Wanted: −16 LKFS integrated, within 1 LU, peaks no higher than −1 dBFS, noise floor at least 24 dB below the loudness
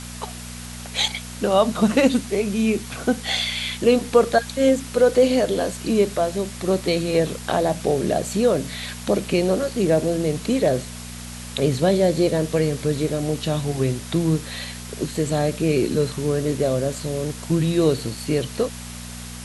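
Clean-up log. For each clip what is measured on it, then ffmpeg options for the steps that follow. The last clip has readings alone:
mains hum 60 Hz; hum harmonics up to 240 Hz; level of the hum −34 dBFS; background noise floor −35 dBFS; target noise floor −46 dBFS; integrated loudness −21.5 LKFS; sample peak −4.0 dBFS; target loudness −16.0 LKFS
→ -af "bandreject=frequency=60:width_type=h:width=4,bandreject=frequency=120:width_type=h:width=4,bandreject=frequency=180:width_type=h:width=4,bandreject=frequency=240:width_type=h:width=4"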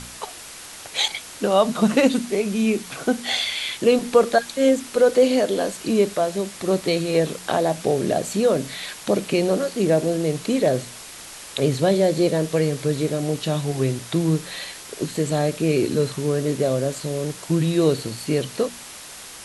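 mains hum none found; background noise floor −39 dBFS; target noise floor −46 dBFS
→ -af "afftdn=noise_reduction=7:noise_floor=-39"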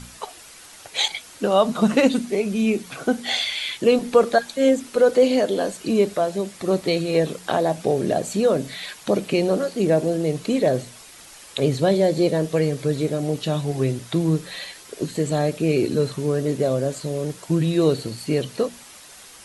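background noise floor −45 dBFS; target noise floor −46 dBFS
→ -af "afftdn=noise_reduction=6:noise_floor=-45"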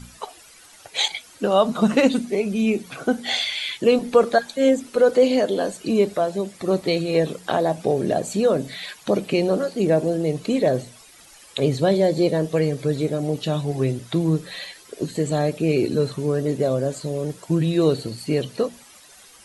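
background noise floor −48 dBFS; integrated loudness −22.0 LKFS; sample peak −4.5 dBFS; target loudness −16.0 LKFS
→ -af "volume=6dB,alimiter=limit=-1dB:level=0:latency=1"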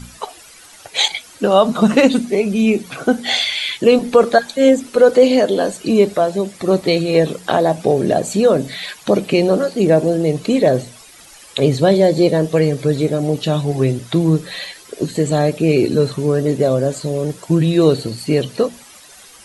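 integrated loudness −16.0 LKFS; sample peak −1.0 dBFS; background noise floor −42 dBFS

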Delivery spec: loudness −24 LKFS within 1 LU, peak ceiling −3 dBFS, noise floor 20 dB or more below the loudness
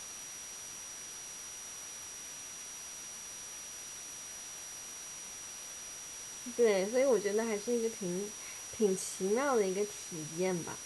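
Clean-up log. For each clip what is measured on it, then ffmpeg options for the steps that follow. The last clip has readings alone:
interfering tone 5,800 Hz; level of the tone −45 dBFS; background noise floor −46 dBFS; target noise floor −56 dBFS; integrated loudness −36.0 LKFS; sample peak −18.5 dBFS; target loudness −24.0 LKFS
→ -af "bandreject=frequency=5800:width=30"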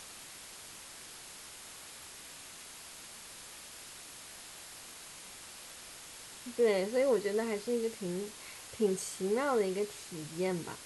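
interfering tone none found; background noise floor −50 dBFS; target noise floor −57 dBFS
→ -af "afftdn=noise_reduction=7:noise_floor=-50"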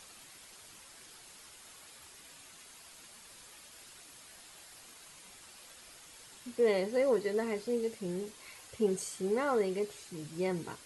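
background noise floor −55 dBFS; integrated loudness −33.5 LKFS; sample peak −19.0 dBFS; target loudness −24.0 LKFS
→ -af "volume=9.5dB"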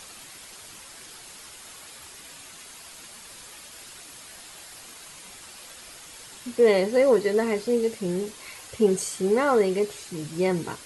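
integrated loudness −24.0 LKFS; sample peak −9.5 dBFS; background noise floor −45 dBFS

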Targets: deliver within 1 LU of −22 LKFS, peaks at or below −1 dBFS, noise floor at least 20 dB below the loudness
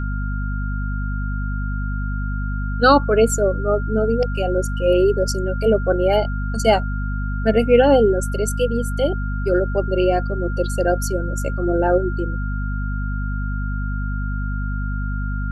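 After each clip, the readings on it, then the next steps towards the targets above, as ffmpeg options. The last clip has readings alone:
mains hum 50 Hz; hum harmonics up to 250 Hz; level of the hum −21 dBFS; interfering tone 1,400 Hz; level of the tone −32 dBFS; integrated loudness −20.5 LKFS; sample peak −2.0 dBFS; target loudness −22.0 LKFS
→ -af "bandreject=frequency=50:width_type=h:width=4,bandreject=frequency=100:width_type=h:width=4,bandreject=frequency=150:width_type=h:width=4,bandreject=frequency=200:width_type=h:width=4,bandreject=frequency=250:width_type=h:width=4"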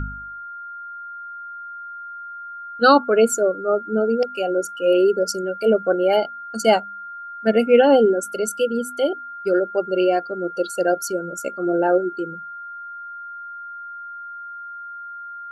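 mains hum none found; interfering tone 1,400 Hz; level of the tone −32 dBFS
→ -af "bandreject=frequency=1400:width=30"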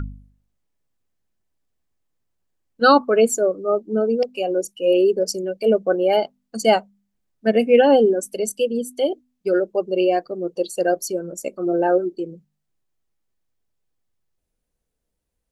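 interfering tone none found; integrated loudness −20.0 LKFS; sample peak −3.0 dBFS; target loudness −22.0 LKFS
→ -af "volume=-2dB"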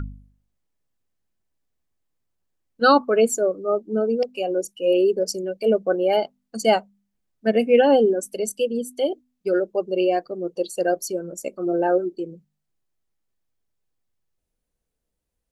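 integrated loudness −22.0 LKFS; sample peak −5.0 dBFS; background noise floor −79 dBFS

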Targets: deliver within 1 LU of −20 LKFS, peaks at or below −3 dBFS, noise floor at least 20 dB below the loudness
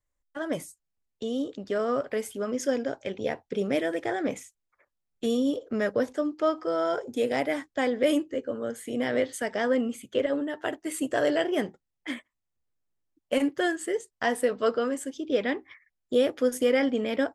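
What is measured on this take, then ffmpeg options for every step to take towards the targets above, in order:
integrated loudness −28.5 LKFS; sample peak −12.5 dBFS; target loudness −20.0 LKFS
→ -af "volume=8.5dB"

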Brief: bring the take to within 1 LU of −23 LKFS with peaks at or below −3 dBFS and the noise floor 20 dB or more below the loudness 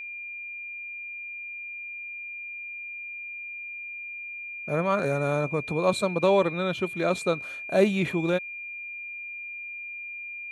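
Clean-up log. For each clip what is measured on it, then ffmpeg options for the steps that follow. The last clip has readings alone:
interfering tone 2,400 Hz; level of the tone −35 dBFS; integrated loudness −29.0 LKFS; sample peak −8.5 dBFS; target loudness −23.0 LKFS
→ -af "bandreject=frequency=2400:width=30"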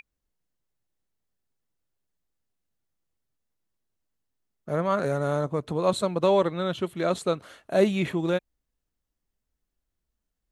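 interfering tone none found; integrated loudness −26.0 LKFS; sample peak −9.0 dBFS; target loudness −23.0 LKFS
→ -af "volume=3dB"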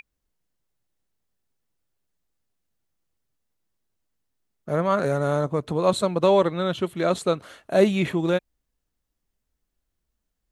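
integrated loudness −23.0 LKFS; sample peak −6.0 dBFS; background noise floor −80 dBFS

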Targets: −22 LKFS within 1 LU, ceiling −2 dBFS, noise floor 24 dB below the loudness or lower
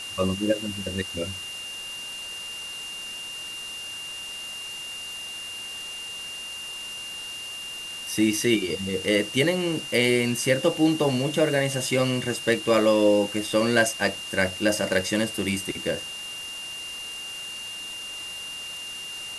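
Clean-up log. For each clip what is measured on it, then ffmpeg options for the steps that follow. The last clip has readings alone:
interfering tone 2,800 Hz; level of the tone −34 dBFS; background noise floor −36 dBFS; target noise floor −51 dBFS; integrated loudness −26.5 LKFS; sample peak −5.5 dBFS; target loudness −22.0 LKFS
→ -af "bandreject=frequency=2800:width=30"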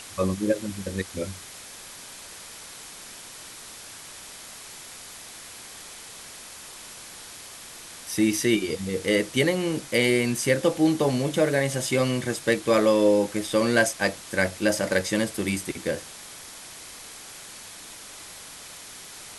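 interfering tone none found; background noise floor −43 dBFS; target noise floor −48 dBFS
→ -af "afftdn=noise_reduction=6:noise_floor=-43"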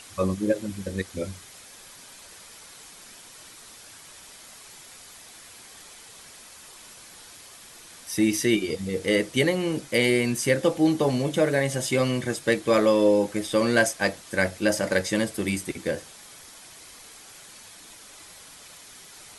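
background noise floor −47 dBFS; target noise floor −49 dBFS
→ -af "afftdn=noise_reduction=6:noise_floor=-47"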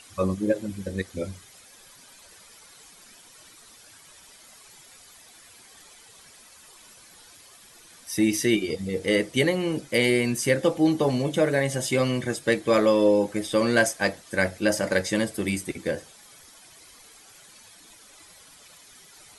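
background noise floor −52 dBFS; integrated loudness −24.5 LKFS; sample peak −6.0 dBFS; target loudness −22.0 LKFS
→ -af "volume=2.5dB"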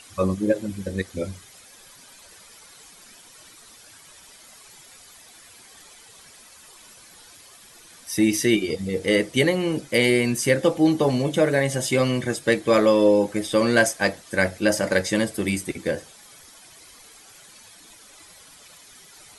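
integrated loudness −22.0 LKFS; sample peak −3.5 dBFS; background noise floor −49 dBFS

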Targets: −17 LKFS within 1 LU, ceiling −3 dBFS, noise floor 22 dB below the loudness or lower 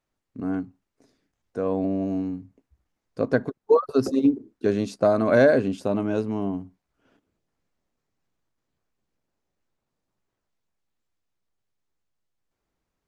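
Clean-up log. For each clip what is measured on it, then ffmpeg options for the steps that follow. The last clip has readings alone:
integrated loudness −24.0 LKFS; sample peak −7.0 dBFS; target loudness −17.0 LKFS
→ -af "volume=7dB,alimiter=limit=-3dB:level=0:latency=1"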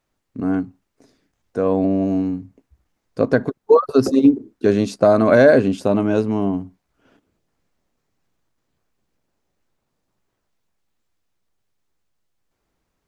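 integrated loudness −17.5 LKFS; sample peak −3.0 dBFS; background noise floor −75 dBFS

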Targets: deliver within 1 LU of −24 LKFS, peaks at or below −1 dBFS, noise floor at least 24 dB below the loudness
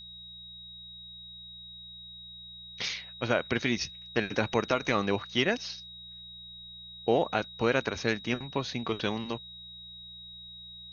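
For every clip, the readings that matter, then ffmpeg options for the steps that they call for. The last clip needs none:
mains hum 60 Hz; hum harmonics up to 180 Hz; level of the hum −57 dBFS; interfering tone 3,800 Hz; level of the tone −44 dBFS; integrated loudness −30.5 LKFS; sample peak −10.5 dBFS; target loudness −24.0 LKFS
→ -af "bandreject=frequency=60:width_type=h:width=4,bandreject=frequency=120:width_type=h:width=4,bandreject=frequency=180:width_type=h:width=4"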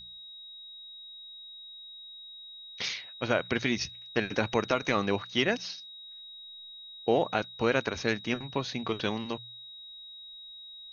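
mains hum none found; interfering tone 3,800 Hz; level of the tone −44 dBFS
→ -af "bandreject=frequency=3800:width=30"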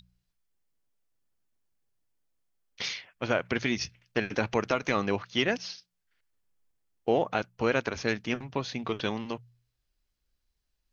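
interfering tone none found; integrated loudness −30.5 LKFS; sample peak −10.5 dBFS; target loudness −24.0 LKFS
→ -af "volume=6.5dB"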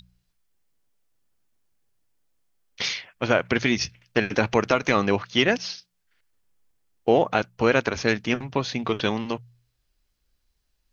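integrated loudness −24.0 LKFS; sample peak −4.0 dBFS; background noise floor −74 dBFS

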